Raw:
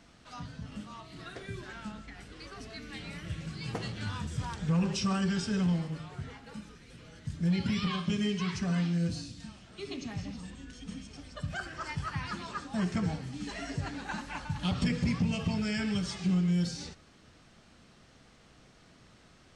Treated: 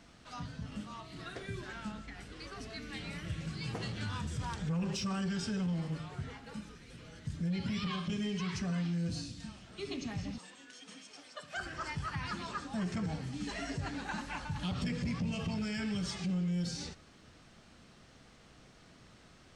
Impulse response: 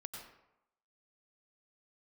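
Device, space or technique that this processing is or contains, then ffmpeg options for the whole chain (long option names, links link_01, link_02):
soft clipper into limiter: -filter_complex "[0:a]asoftclip=type=tanh:threshold=-22dB,alimiter=level_in=5dB:limit=-24dB:level=0:latency=1:release=73,volume=-5dB,asettb=1/sr,asplit=3[link_01][link_02][link_03];[link_01]atrim=end=10.384[link_04];[link_02]atrim=start=10.38:end=11.57,asetpts=PTS-STARTPTS,afade=type=in:duration=0.004:curve=qsin,afade=type=out:start_time=1.186:duration=0.004:curve=qsin,highpass=500[link_05];[link_03]atrim=start=11.566[link_06];[link_04][link_05]acrossfade=duration=0.004:curve1=hsin:curve2=qsin[link_07];[link_07][link_06]acrossfade=duration=0.004:curve1=qsin:curve2=hsin"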